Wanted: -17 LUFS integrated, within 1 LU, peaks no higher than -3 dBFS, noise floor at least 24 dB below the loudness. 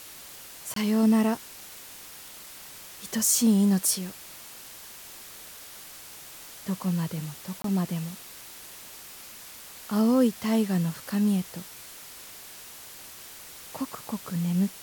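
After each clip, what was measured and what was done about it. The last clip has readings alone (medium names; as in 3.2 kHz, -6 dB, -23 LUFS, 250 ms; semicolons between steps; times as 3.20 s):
dropouts 2; longest dropout 23 ms; noise floor -45 dBFS; noise floor target -50 dBFS; loudness -26.0 LUFS; peak level -10.0 dBFS; loudness target -17.0 LUFS
-> interpolate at 0.74/7.62 s, 23 ms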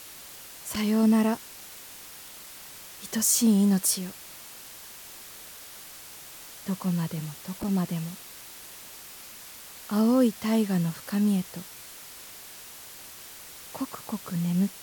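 dropouts 0; noise floor -45 dBFS; noise floor target -50 dBFS
-> noise print and reduce 6 dB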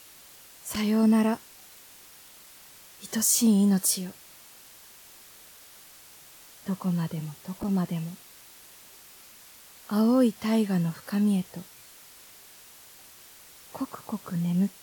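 noise floor -51 dBFS; loudness -26.0 LUFS; peak level -10.0 dBFS; loudness target -17.0 LUFS
-> trim +9 dB; peak limiter -3 dBFS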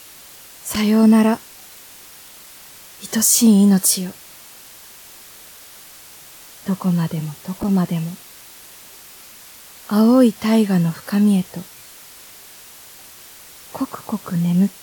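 loudness -17.0 LUFS; peak level -3.0 dBFS; noise floor -42 dBFS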